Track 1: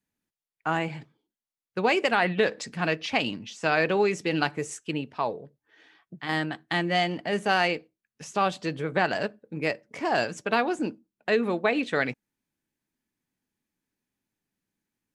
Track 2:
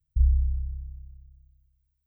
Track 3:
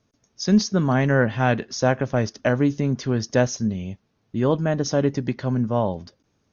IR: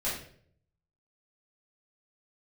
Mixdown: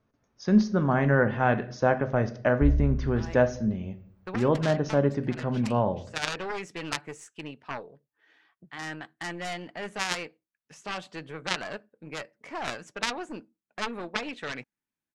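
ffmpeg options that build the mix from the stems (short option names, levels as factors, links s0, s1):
-filter_complex "[0:a]aeval=exprs='0.355*(cos(1*acos(clip(val(0)/0.355,-1,1)))-cos(1*PI/2))+0.158*(cos(3*acos(clip(val(0)/0.355,-1,1)))-cos(3*PI/2))+0.0562*(cos(4*acos(clip(val(0)/0.355,-1,1)))-cos(4*PI/2))+0.0158*(cos(6*acos(clip(val(0)/0.355,-1,1)))-cos(6*PI/2))':c=same,adelay=2500,volume=0.944[s0];[1:a]adelay=2450,volume=0.708[s1];[2:a]lowpass=f=1400:p=1,volume=0.531,asplit=3[s2][s3][s4];[s3]volume=0.158[s5];[s4]apad=whole_len=777960[s6];[s0][s6]sidechaincompress=threshold=0.0251:ratio=8:attack=6.3:release=450[s7];[3:a]atrim=start_sample=2205[s8];[s5][s8]afir=irnorm=-1:irlink=0[s9];[s7][s1][s2][s9]amix=inputs=4:normalize=0,equalizer=f=1400:t=o:w=2.1:g=6"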